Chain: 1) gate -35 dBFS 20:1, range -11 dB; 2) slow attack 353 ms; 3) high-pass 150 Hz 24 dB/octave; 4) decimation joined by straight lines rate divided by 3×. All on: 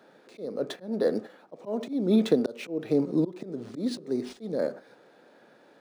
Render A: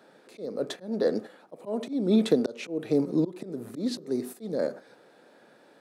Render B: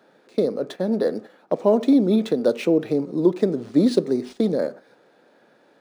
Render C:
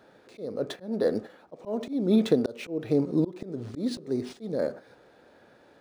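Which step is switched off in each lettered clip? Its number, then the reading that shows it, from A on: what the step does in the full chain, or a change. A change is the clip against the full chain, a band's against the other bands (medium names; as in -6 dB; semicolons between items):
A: 4, 4 kHz band +1.5 dB; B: 2, crest factor change -3.5 dB; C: 3, 125 Hz band +2.5 dB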